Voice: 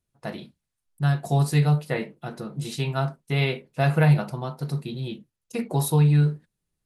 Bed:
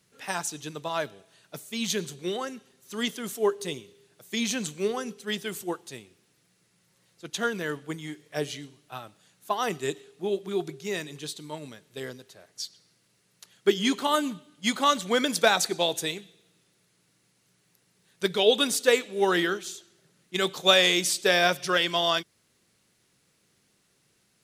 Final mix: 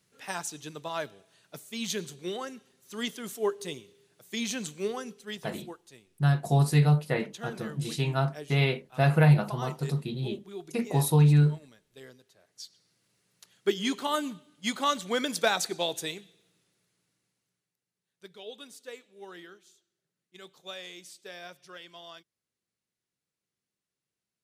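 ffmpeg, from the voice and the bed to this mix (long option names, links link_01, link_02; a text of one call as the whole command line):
ffmpeg -i stem1.wav -i stem2.wav -filter_complex "[0:a]adelay=5200,volume=-1.5dB[link_01];[1:a]volume=3.5dB,afade=type=out:start_time=4.93:duration=0.66:silence=0.398107,afade=type=in:start_time=12.36:duration=0.75:silence=0.421697,afade=type=out:start_time=16.43:duration=1.29:silence=0.125893[link_02];[link_01][link_02]amix=inputs=2:normalize=0" out.wav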